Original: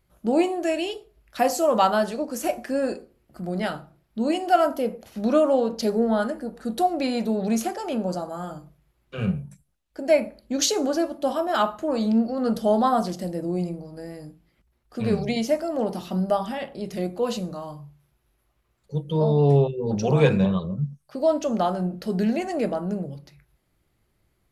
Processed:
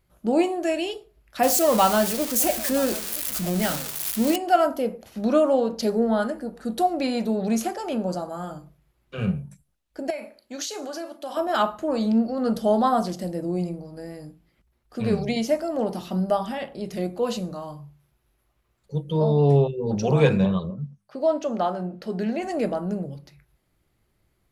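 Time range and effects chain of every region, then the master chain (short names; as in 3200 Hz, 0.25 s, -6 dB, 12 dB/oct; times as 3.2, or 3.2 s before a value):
1.43–4.36 switching spikes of -16.5 dBFS + low shelf 130 Hz +11.5 dB + echo 0.97 s -19 dB
10.1–11.37 HPF 840 Hz 6 dB/oct + compressor 4:1, threshold -29 dBFS + doubler 36 ms -13 dB
20.7–22.43 LPF 3300 Hz 6 dB/oct + low shelf 160 Hz -11 dB + de-hum 100.5 Hz, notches 2
whole clip: dry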